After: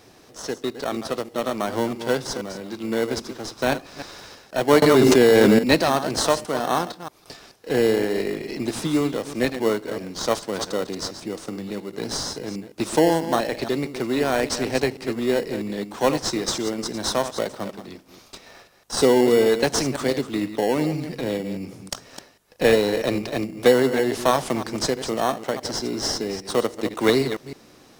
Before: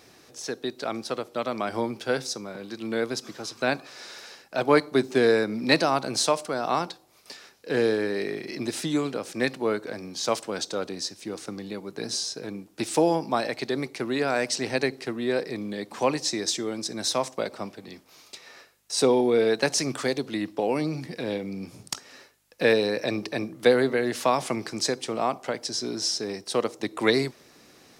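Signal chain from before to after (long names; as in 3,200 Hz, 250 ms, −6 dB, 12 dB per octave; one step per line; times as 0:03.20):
delay that plays each chunk backwards 161 ms, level −10.5 dB
in parallel at −4 dB: decimation without filtering 18×
0:04.82–0:05.59: on the sum: envelope flattener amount 100%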